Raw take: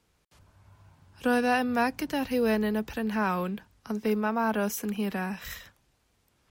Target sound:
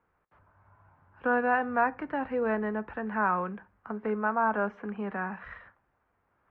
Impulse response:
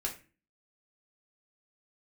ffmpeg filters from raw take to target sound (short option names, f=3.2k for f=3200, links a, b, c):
-filter_complex "[0:a]lowpass=f=1.5k:w=0.5412,lowpass=f=1.5k:w=1.3066,tiltshelf=f=650:g=-8,asplit=2[a][b];[1:a]atrim=start_sample=2205,adelay=10[c];[b][c]afir=irnorm=-1:irlink=0,volume=-17.5dB[d];[a][d]amix=inputs=2:normalize=0"